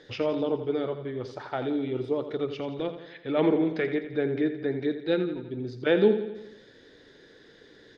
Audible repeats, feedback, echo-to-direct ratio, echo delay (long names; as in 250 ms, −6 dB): 5, 56%, −9.5 dB, 85 ms